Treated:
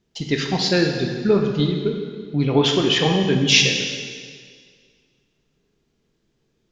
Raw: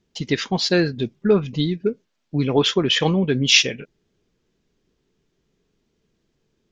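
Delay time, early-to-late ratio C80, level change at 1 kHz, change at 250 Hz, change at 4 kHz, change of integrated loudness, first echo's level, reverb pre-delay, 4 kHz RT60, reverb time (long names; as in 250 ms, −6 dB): no echo audible, 5.0 dB, +1.5 dB, +1.0 dB, +1.0 dB, +0.5 dB, no echo audible, 7 ms, 1.8 s, 1.9 s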